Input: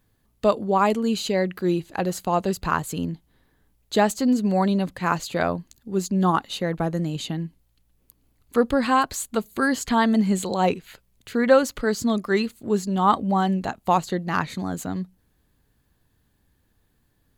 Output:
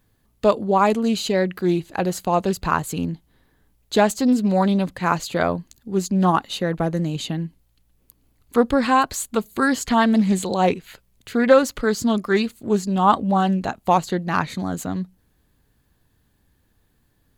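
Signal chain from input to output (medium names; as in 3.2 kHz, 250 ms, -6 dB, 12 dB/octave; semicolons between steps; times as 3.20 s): loudspeaker Doppler distortion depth 0.17 ms; trim +2.5 dB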